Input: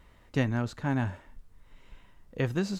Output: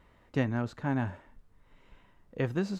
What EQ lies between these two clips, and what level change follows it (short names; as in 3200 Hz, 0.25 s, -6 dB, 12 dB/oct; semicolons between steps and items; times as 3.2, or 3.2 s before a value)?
low shelf 89 Hz -8 dB; high shelf 3000 Hz -9 dB; 0.0 dB